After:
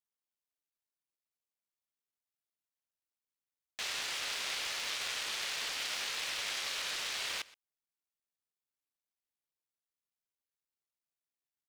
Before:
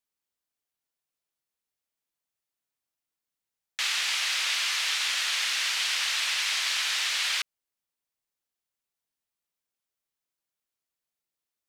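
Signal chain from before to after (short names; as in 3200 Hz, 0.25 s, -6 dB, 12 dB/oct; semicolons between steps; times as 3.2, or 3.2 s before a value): cycle switcher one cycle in 3, muted; echo 0.123 s -21 dB; gain -8 dB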